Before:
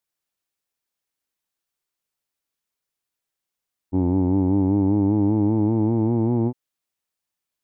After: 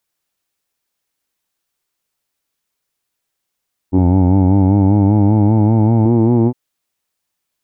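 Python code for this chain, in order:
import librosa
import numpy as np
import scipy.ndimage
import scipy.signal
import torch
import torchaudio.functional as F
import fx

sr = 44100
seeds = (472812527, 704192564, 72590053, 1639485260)

y = fx.comb(x, sr, ms=1.4, depth=0.53, at=(3.98, 6.06))
y = F.gain(torch.from_numpy(y), 8.5).numpy()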